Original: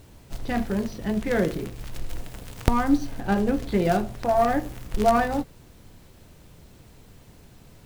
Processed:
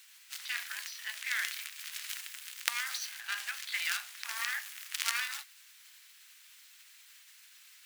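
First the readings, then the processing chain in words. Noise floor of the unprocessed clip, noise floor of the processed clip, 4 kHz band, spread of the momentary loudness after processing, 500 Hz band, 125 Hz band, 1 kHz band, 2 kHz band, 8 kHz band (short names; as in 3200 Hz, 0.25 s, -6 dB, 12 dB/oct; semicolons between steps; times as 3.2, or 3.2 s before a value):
-51 dBFS, -58 dBFS, +5.5 dB, 22 LU, under -40 dB, under -40 dB, -20.0 dB, 0.0 dB, +5.5 dB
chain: spectral limiter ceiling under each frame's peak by 20 dB; inverse Chebyshev high-pass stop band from 280 Hz, stop band 80 dB; gain -5 dB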